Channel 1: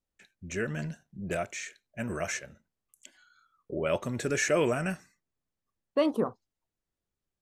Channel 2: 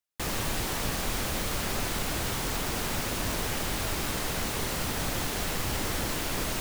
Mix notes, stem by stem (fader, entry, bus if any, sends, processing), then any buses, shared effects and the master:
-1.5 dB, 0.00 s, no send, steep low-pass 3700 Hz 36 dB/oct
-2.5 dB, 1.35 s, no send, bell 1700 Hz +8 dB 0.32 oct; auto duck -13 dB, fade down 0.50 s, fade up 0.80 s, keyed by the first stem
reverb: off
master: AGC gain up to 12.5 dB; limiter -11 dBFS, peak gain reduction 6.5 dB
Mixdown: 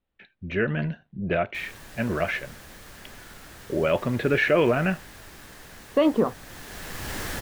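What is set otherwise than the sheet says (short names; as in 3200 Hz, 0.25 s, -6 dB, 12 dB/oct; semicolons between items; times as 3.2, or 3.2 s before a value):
stem 1 -1.5 dB -> +7.5 dB; master: missing AGC gain up to 12.5 dB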